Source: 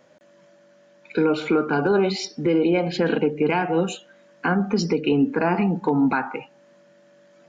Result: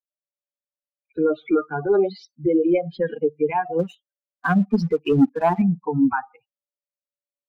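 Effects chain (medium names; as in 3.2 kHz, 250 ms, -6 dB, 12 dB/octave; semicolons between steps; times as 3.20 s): expander on every frequency bin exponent 3; FFT filter 1 kHz 0 dB, 4.7 kHz -15 dB, 7 kHz -29 dB; 3.79–5.62 s: waveshaping leveller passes 1; trim +6 dB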